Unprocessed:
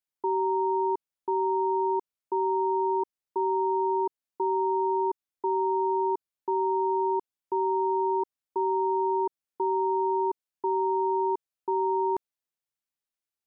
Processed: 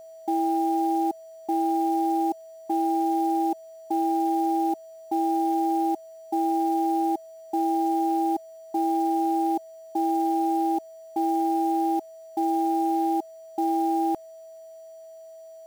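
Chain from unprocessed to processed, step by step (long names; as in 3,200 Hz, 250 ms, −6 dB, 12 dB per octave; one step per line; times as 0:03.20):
speed change −14%
steady tone 650 Hz −44 dBFS
log-companded quantiser 6 bits
level +2 dB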